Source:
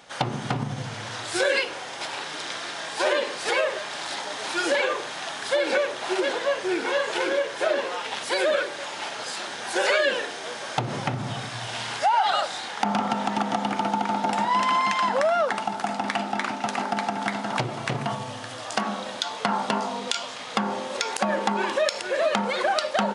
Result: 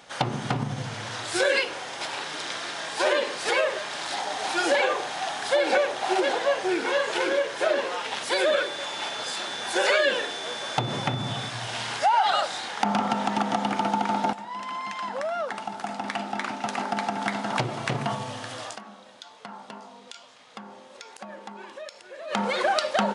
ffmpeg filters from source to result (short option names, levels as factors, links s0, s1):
-filter_complex "[0:a]asettb=1/sr,asplit=3[s0][s1][s2];[s0]atrim=end=4.134[s3];[s1]atrim=start=4.13:end=6.7,asetpts=PTS-STARTPTS,afade=t=in:d=0.004:c=qsin,afade=t=out:st=2.566:d=0.004:c=qsin,equalizer=f=760:t=o:w=0.22:g=11[s4];[s2]atrim=start=6.696[s5];[s3][s4]acrossfade=d=0.004:c1=hsin:c2=qsin[s6];[s6][s5]acrossfade=d=0.004:c1=qsin:c2=hsin,asettb=1/sr,asplit=3[s7][s8][s9];[s7]atrim=end=8.304[s10];[s8]atrim=start=8.3:end=11.5,asetpts=PTS-STARTPTS,afade=t=in:d=0.004:c=qsin,afade=t=out:st=3.196:d=0.004:c=qsin,aeval=exprs='val(0)+0.0158*sin(2*PI*3500*n/s)':c=same[s11];[s9]atrim=start=11.496[s12];[s10][s11]acrossfade=d=0.004:c1=hsin:c2=qsin[s13];[s13][s12]acrossfade=d=0.004:c1=qsin:c2=hsin,asplit=4[s14][s15][s16][s17];[s14]atrim=end=14.33,asetpts=PTS-STARTPTS,afade=t=out:st=14.326:d=0.004:c=hsin:silence=0.16788[s18];[s15]atrim=start=14.33:end=18.78,asetpts=PTS-STARTPTS,afade=t=in:d=3.19:silence=0.16788,afade=t=out:st=4.27:d=0.18:c=qsin:silence=0.149624[s19];[s16]atrim=start=18.78:end=22.27,asetpts=PTS-STARTPTS,volume=0.15[s20];[s17]atrim=start=22.27,asetpts=PTS-STARTPTS,afade=t=in:d=0.18:c=qsin:silence=0.149624[s21];[s18][s19][s20][s21]concat=n=4:v=0:a=1"